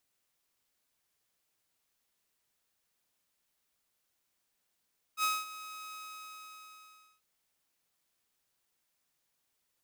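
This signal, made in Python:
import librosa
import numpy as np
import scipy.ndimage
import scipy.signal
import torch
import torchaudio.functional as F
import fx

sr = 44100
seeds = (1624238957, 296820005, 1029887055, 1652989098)

y = fx.adsr_tone(sr, wave='saw', hz=1270.0, attack_ms=65.0, decay_ms=212.0, sustain_db=-16.5, held_s=0.76, release_ms=1280.0, level_db=-24.0)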